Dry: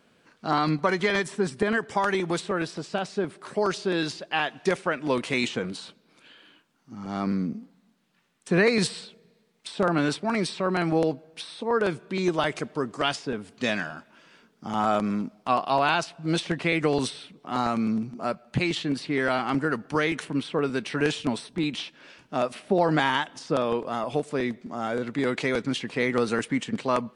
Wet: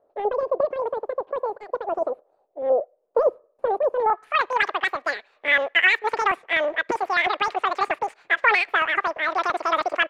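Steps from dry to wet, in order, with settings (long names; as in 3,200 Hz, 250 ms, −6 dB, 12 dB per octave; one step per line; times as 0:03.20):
leveller curve on the samples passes 1
low-pass filter sweep 220 Hz → 800 Hz, 0:10.79–0:11.58
change of speed 2.69×
level −2 dB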